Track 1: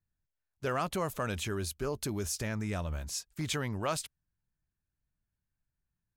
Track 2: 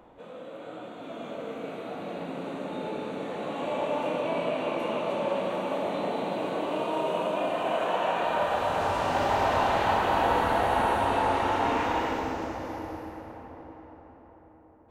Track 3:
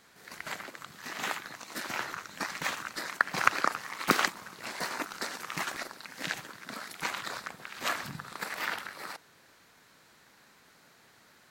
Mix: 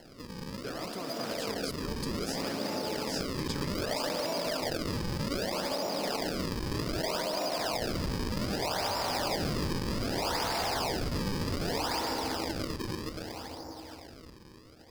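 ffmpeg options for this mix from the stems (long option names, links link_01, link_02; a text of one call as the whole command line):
ffmpeg -i stem1.wav -i stem2.wav -i stem3.wav -filter_complex "[0:a]highpass=200,acrossover=split=340[link_01][link_02];[link_02]acompressor=threshold=-36dB:ratio=6[link_03];[link_01][link_03]amix=inputs=2:normalize=0,volume=-5.5dB[link_04];[1:a]aeval=exprs='0.0794*(abs(mod(val(0)/0.0794+3,4)-2)-1)':channel_layout=same,volume=1.5dB[link_05];[2:a]volume=-14dB[link_06];[link_05][link_06]amix=inputs=2:normalize=0,acrusher=samples=36:mix=1:aa=0.000001:lfo=1:lforange=57.6:lforate=0.64,acompressor=threshold=-30dB:ratio=6,volume=0dB[link_07];[link_04][link_07]amix=inputs=2:normalize=0,equalizer=frequency=4900:width=5.9:gain=15" out.wav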